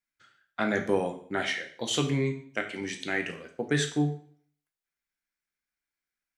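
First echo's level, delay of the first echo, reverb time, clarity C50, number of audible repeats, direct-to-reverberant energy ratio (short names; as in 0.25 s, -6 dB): none, none, 0.55 s, 10.0 dB, none, 4.0 dB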